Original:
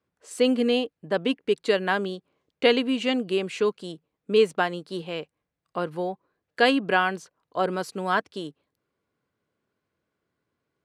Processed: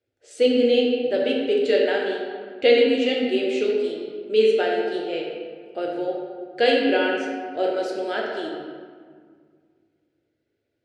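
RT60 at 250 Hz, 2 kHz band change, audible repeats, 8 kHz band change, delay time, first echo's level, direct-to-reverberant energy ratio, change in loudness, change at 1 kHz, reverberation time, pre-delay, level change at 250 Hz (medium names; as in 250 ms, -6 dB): 2.6 s, 0.0 dB, no echo, no reading, no echo, no echo, -3.0 dB, +3.0 dB, -2.0 dB, 1.9 s, 6 ms, +2.0 dB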